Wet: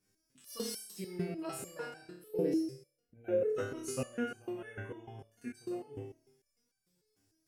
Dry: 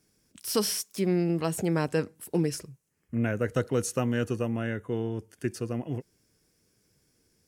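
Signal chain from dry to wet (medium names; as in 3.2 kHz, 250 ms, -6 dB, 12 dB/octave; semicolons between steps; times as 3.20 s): 2.11–3.49 s: graphic EQ 500/1000/2000/8000 Hz +12/-11/-3/-9 dB; on a send: flutter echo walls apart 4.8 m, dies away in 0.66 s; on the sum: resonator arpeggio 6.7 Hz 98–780 Hz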